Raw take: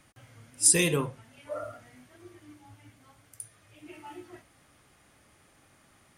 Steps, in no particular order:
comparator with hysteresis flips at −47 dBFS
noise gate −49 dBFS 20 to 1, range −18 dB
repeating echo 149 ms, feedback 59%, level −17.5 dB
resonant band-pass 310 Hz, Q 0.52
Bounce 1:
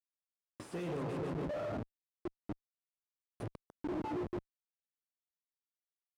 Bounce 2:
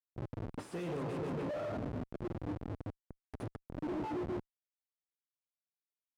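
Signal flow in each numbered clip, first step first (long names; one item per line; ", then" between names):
noise gate, then repeating echo, then comparator with hysteresis, then resonant band-pass
repeating echo, then comparator with hysteresis, then noise gate, then resonant band-pass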